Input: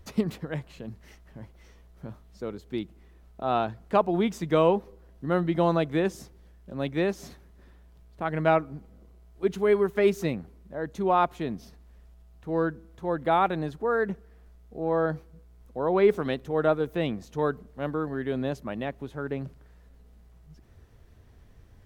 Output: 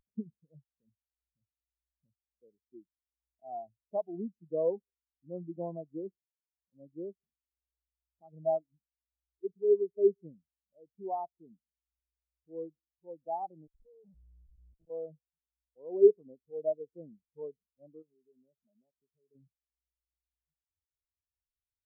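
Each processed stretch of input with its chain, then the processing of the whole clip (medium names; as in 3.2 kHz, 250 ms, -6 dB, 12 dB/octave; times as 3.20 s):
6.18–6.73 s: high-pass 67 Hz + level held to a coarse grid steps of 10 dB
13.67–14.90 s: slow attack 425 ms + tilt EQ -4 dB/octave + Schmitt trigger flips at -42.5 dBFS
18.02–19.35 s: comb 4.9 ms, depth 32% + compression 2:1, threshold -40 dBFS
whole clip: Chebyshev band-stop 870–5000 Hz, order 2; upward compressor, threshold -44 dBFS; spectral contrast expander 2.5:1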